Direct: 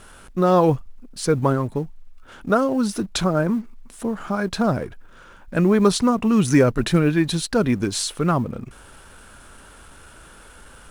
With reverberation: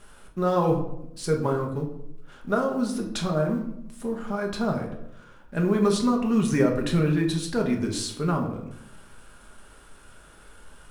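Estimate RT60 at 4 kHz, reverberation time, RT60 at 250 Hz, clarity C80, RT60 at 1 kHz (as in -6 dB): 0.50 s, 0.80 s, 0.95 s, 10.5 dB, 0.70 s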